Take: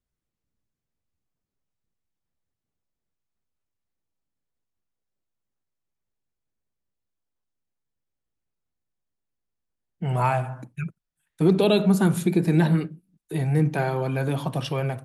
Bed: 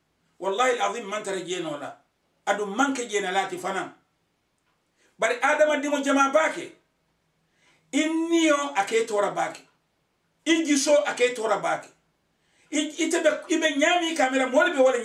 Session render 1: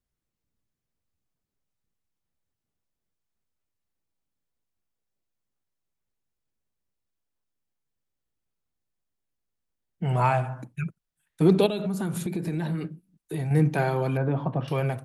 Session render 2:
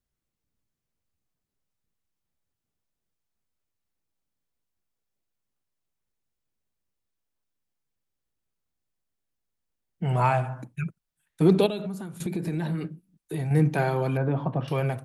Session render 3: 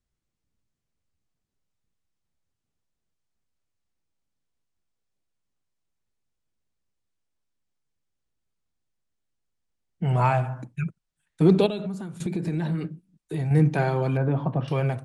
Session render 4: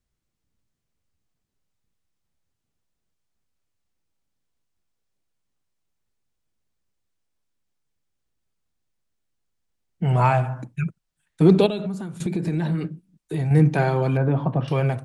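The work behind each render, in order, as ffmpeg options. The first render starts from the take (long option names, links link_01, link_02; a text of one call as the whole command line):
ffmpeg -i in.wav -filter_complex "[0:a]asettb=1/sr,asplit=3[link_01][link_02][link_03];[link_01]atrim=end=10.144[link_04];[link_02]atrim=start=10.14:end=10.58,asetpts=PTS-STARTPTS,afade=type=in:duration=0.004:curve=qsin,afade=type=out:start_time=0.436:duration=0.004:curve=qsin,lowpass=8400[link_05];[link_03]atrim=start=10.576[link_06];[link_04][link_05]acrossfade=duration=0.004:curve1=hsin:curve2=qsin[link_07];[link_07][link_06]acrossfade=duration=0.004:curve1=qsin:curve2=hsin,asettb=1/sr,asplit=3[link_08][link_09][link_10];[link_08]atrim=end=11.664[link_11];[link_09]atrim=start=11.66:end=13.51,asetpts=PTS-STARTPTS,afade=type=in:duration=0.004:curve=qsin,afade=type=out:start_time=1.846:duration=0.004:curve=qsin,acompressor=threshold=-26dB:ratio=5:attack=3.2:release=140:knee=1:detection=peak[link_12];[link_10]atrim=start=13.506[link_13];[link_11][link_12]acrossfade=duration=0.004:curve1=hsin:curve2=qsin[link_14];[link_14][link_13]acrossfade=duration=0.004:curve1=qsin:curve2=hsin,asettb=1/sr,asplit=3[link_15][link_16][link_17];[link_15]atrim=end=14.174[link_18];[link_16]atrim=start=14.17:end=14.68,asetpts=PTS-STARTPTS,afade=type=in:duration=0.004:curve=qsin,afade=type=out:start_time=0.506:duration=0.004:curve=qsin,lowpass=1400[link_19];[link_17]atrim=start=14.676[link_20];[link_18][link_19]acrossfade=duration=0.004:curve1=hsin:curve2=qsin[link_21];[link_21][link_20]acrossfade=duration=0.004:curve1=qsin:curve2=hsin" out.wav
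ffmpeg -i in.wav -filter_complex "[0:a]asplit=2[link_01][link_02];[link_01]atrim=end=12.2,asetpts=PTS-STARTPTS,afade=type=out:start_time=11.59:duration=0.61:silence=0.188365[link_03];[link_02]atrim=start=12.2,asetpts=PTS-STARTPTS,afade=type=in:duration=0.004:curve=hsin:silence=0.188365[link_04];[link_03][link_04]concat=n=2:v=0:a=1" out.wav
ffmpeg -i in.wav -af "lowpass=frequency=9200:width=0.5412,lowpass=frequency=9200:width=1.3066,lowshelf=frequency=210:gain=3.5" out.wav
ffmpeg -i in.wav -af "volume=3dB" out.wav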